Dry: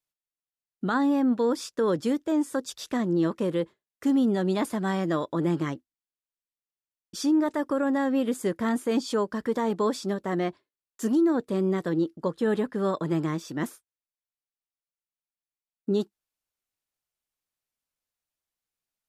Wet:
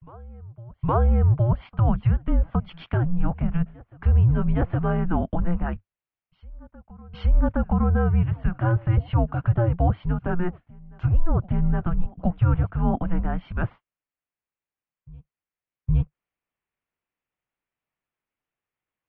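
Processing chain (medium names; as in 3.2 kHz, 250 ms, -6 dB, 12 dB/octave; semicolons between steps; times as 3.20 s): low-pass that closes with the level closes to 1.8 kHz, closed at -23 dBFS; reverse echo 816 ms -23.5 dB; mistuned SSB -350 Hz 170–3100 Hz; trim +5.5 dB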